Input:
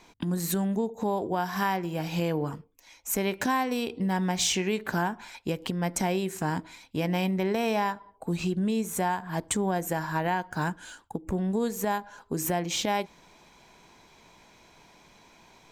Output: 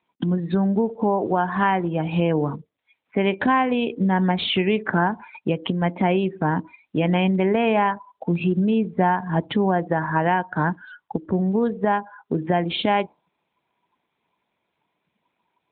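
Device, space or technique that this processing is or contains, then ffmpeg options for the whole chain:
mobile call with aggressive noise cancelling: -filter_complex "[0:a]asplit=3[a][b][c];[a]afade=t=out:st=8.81:d=0.02[d];[b]lowshelf=f=190:g=5.5,afade=t=in:st=8.81:d=0.02,afade=t=out:st=9.55:d=0.02[e];[c]afade=t=in:st=9.55:d=0.02[f];[d][e][f]amix=inputs=3:normalize=0,highpass=110,afftdn=nr=25:nf=-41,volume=8dB" -ar 8000 -c:a libopencore_amrnb -b:a 12200

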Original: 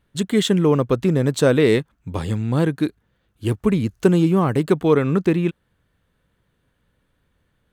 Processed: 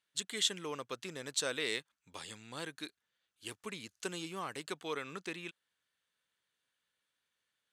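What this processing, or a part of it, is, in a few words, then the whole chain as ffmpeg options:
piezo pickup straight into a mixer: -af "lowpass=6.5k,aderivative"

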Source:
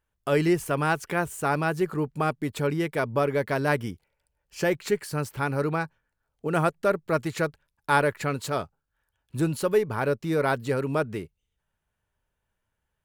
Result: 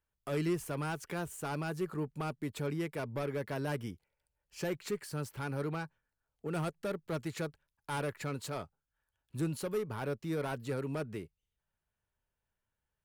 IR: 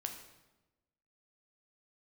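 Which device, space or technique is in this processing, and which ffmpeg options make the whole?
one-band saturation: -filter_complex "[0:a]acrossover=split=320|4300[a][b][c];[b]asoftclip=type=tanh:threshold=-26.5dB[d];[a][d][c]amix=inputs=3:normalize=0,volume=-8dB"

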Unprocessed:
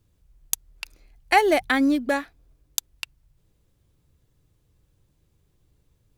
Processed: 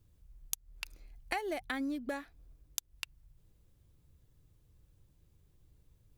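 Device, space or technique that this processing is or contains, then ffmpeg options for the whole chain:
ASMR close-microphone chain: -af "lowshelf=f=130:g=6.5,acompressor=threshold=-30dB:ratio=5,highshelf=f=12k:g=5.5,volume=-5dB"

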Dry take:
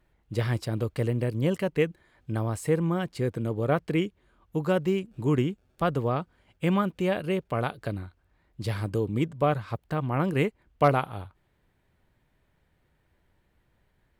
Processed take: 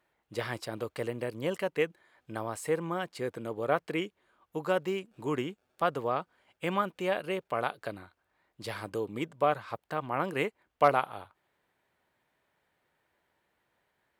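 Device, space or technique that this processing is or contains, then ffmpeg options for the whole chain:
filter by subtraction: -filter_complex "[0:a]asplit=2[a][b];[b]lowpass=820,volume=-1[c];[a][c]amix=inputs=2:normalize=0,volume=-2dB"

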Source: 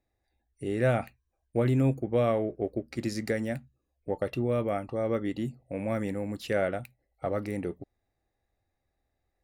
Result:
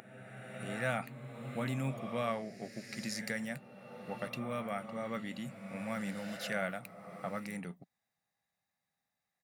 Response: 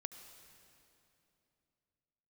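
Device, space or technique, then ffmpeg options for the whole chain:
ghost voice: -filter_complex "[0:a]firequalizer=gain_entry='entry(100,0);entry(170,9);entry(330,-22);entry(1000,-12);entry(6400,-9)':delay=0.05:min_phase=1,areverse[a];[1:a]atrim=start_sample=2205[b];[a][b]afir=irnorm=-1:irlink=0,areverse,highpass=550,volume=14dB"

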